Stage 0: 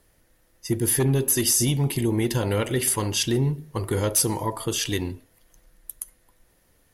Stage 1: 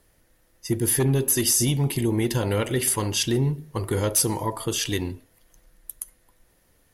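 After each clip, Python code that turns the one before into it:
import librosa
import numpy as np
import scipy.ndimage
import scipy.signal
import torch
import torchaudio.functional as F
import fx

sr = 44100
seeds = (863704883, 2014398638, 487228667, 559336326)

y = x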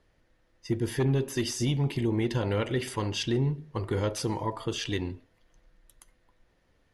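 y = scipy.signal.sosfilt(scipy.signal.butter(2, 4200.0, 'lowpass', fs=sr, output='sos'), x)
y = y * 10.0 ** (-4.0 / 20.0)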